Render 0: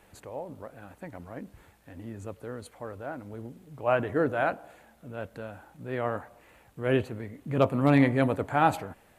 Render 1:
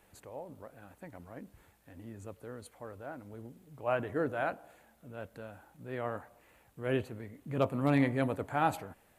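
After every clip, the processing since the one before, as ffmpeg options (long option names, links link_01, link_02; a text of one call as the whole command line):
ffmpeg -i in.wav -af "highshelf=frequency=8900:gain=6.5,volume=-6.5dB" out.wav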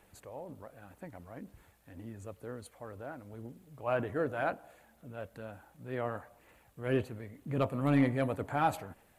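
ffmpeg -i in.wav -af "aphaser=in_gain=1:out_gain=1:delay=1.8:decay=0.25:speed=2:type=sinusoidal,asoftclip=type=tanh:threshold=-16dB" out.wav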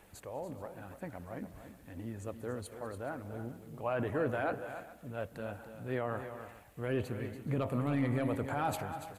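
ffmpeg -i in.wav -filter_complex "[0:a]alimiter=level_in=3.5dB:limit=-24dB:level=0:latency=1:release=46,volume=-3.5dB,asplit=2[link_01][link_02];[link_02]aecho=0:1:199|286|308|423:0.106|0.299|0.112|0.112[link_03];[link_01][link_03]amix=inputs=2:normalize=0,volume=3.5dB" out.wav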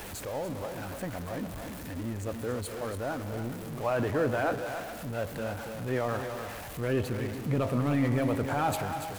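ffmpeg -i in.wav -af "aeval=exprs='val(0)+0.5*0.00891*sgn(val(0))':channel_layout=same,volume=4dB" out.wav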